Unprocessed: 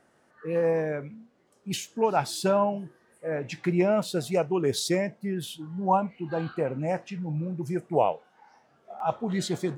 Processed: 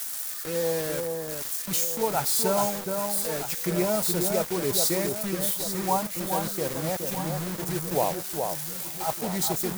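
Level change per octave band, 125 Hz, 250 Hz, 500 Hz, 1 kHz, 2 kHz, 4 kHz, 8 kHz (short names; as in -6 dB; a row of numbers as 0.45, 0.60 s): -1.5, -1.5, -1.5, -1.0, +1.5, +4.5, +12.0 dB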